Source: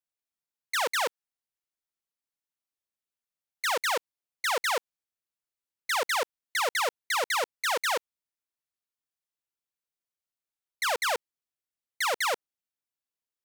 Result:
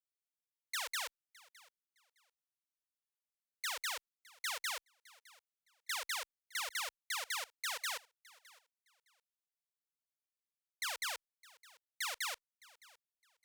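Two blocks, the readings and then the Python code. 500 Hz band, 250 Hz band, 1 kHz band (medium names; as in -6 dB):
-22.5 dB, under -30 dB, -16.0 dB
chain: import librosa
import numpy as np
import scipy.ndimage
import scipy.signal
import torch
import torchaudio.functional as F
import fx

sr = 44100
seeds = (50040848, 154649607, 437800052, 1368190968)

y = fx.tone_stack(x, sr, knobs='10-0-10')
y = fx.echo_feedback(y, sr, ms=612, feedback_pct=22, wet_db=-22.5)
y = y * 10.0 ** (-6.5 / 20.0)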